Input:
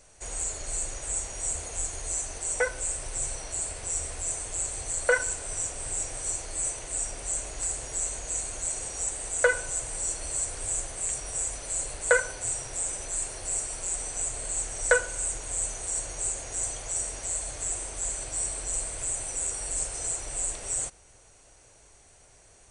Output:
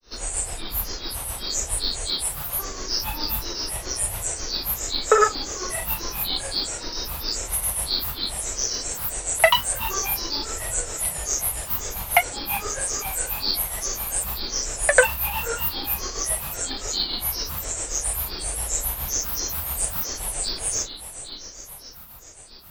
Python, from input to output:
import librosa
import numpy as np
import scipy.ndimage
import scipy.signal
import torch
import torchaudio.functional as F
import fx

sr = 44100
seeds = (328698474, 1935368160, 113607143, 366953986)

y = fx.echo_diffused(x, sr, ms=479, feedback_pct=62, wet_db=-11)
y = fx.granulator(y, sr, seeds[0], grain_ms=229.0, per_s=7.4, spray_ms=100.0, spread_st=12)
y = y * 10.0 ** (7.0 / 20.0)